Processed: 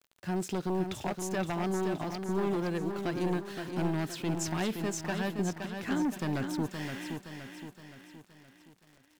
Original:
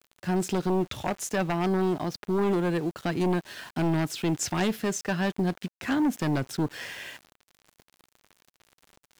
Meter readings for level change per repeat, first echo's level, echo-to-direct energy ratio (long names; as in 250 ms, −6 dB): −6.5 dB, −6.5 dB, −5.5 dB